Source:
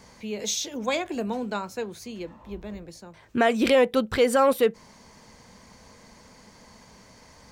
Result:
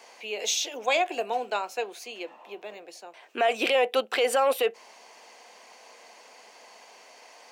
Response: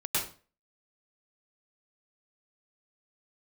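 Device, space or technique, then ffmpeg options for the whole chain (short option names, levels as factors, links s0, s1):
laptop speaker: -af "highpass=f=380:w=0.5412,highpass=f=380:w=1.3066,equalizer=f=730:t=o:w=0.26:g=10,equalizer=f=2700:t=o:w=0.47:g=10,alimiter=limit=0.188:level=0:latency=1:release=13"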